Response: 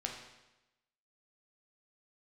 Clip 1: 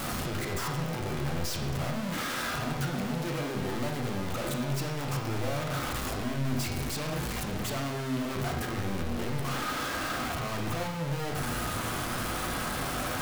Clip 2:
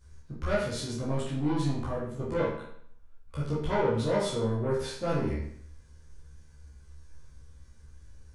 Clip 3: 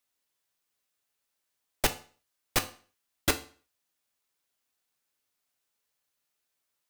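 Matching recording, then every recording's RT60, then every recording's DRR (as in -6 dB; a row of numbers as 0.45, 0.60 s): 1; 1.0, 0.65, 0.40 s; 0.5, -8.5, 7.0 dB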